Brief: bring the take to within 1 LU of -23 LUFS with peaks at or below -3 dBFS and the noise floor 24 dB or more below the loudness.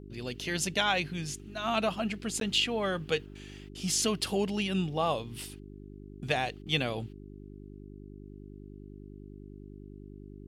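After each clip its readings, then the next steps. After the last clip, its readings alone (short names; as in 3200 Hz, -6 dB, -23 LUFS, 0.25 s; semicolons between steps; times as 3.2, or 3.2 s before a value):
dropouts 1; longest dropout 12 ms; hum 50 Hz; harmonics up to 400 Hz; hum level -45 dBFS; loudness -31.0 LUFS; peak -13.5 dBFS; loudness target -23.0 LUFS
-> interpolate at 2.4, 12 ms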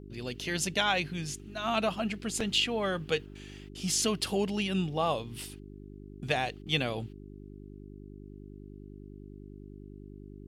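dropouts 0; hum 50 Hz; harmonics up to 400 Hz; hum level -45 dBFS
-> de-hum 50 Hz, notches 8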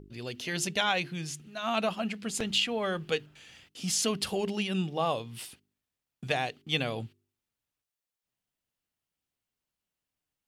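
hum none; loudness -31.0 LUFS; peak -13.5 dBFS; loudness target -23.0 LUFS
-> gain +8 dB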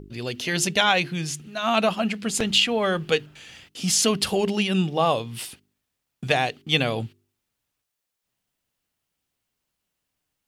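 loudness -23.0 LUFS; peak -5.5 dBFS; noise floor -81 dBFS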